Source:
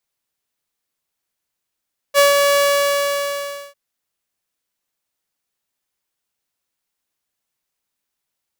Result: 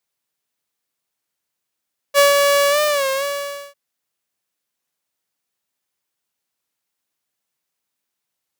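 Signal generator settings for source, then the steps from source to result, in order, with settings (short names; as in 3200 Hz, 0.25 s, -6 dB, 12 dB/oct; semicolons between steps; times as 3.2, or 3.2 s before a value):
ADSR saw 568 Hz, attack 45 ms, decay 0.149 s, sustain -4 dB, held 0.43 s, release 1.17 s -6 dBFS
HPF 90 Hz 12 dB/oct; record warp 33 1/3 rpm, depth 100 cents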